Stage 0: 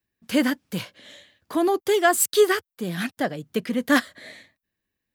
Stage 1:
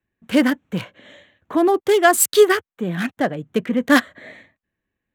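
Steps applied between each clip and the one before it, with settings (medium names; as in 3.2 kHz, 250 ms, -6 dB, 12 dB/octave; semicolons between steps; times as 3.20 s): local Wiener filter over 9 samples; trim +5 dB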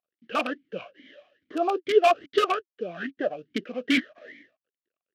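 CVSD coder 32 kbps; integer overflow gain 9 dB; talking filter a-i 2.4 Hz; trim +5 dB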